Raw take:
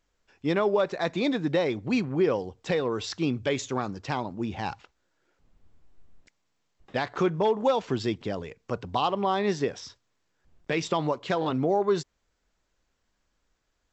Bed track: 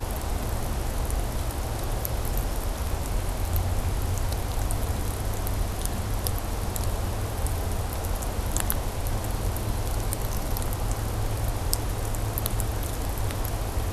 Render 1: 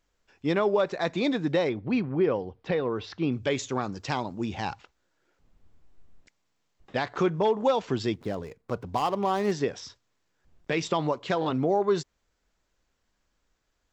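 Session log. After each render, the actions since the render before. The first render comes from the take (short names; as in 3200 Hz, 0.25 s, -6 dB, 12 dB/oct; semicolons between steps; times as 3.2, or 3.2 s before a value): 1.69–3.32 air absorption 230 m; 3.92–4.65 high shelf 4000 Hz +7.5 dB; 8.14–9.52 median filter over 15 samples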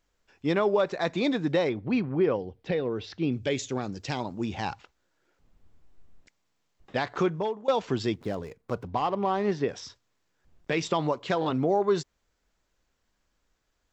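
2.36–4.2 bell 1100 Hz -8.5 dB 0.92 oct; 7.2–7.68 fade out, to -19 dB; 8.87–9.69 air absorption 160 m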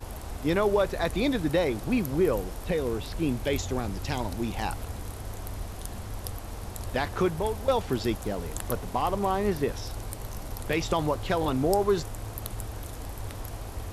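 add bed track -8.5 dB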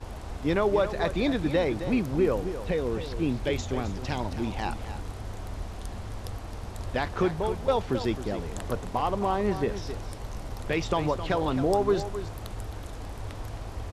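air absorption 62 m; echo 0.265 s -11 dB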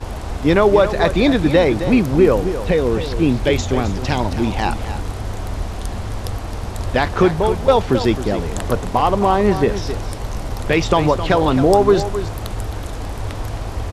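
gain +11.5 dB; limiter -2 dBFS, peak gain reduction 1 dB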